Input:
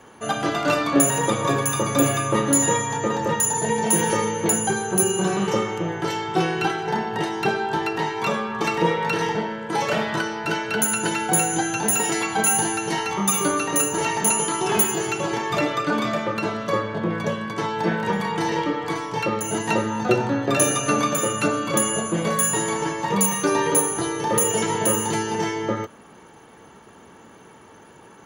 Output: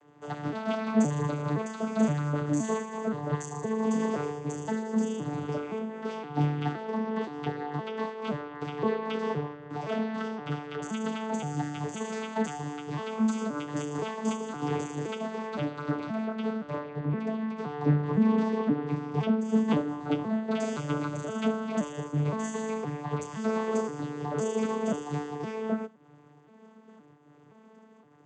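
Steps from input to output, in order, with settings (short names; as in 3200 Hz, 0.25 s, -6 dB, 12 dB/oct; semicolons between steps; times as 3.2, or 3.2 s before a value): arpeggiated vocoder bare fifth, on D3, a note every 0.519 s; 17.86–20 bell 220 Hz +8 dB 1.6 oct; noise-modulated level, depth 60%; gain -4 dB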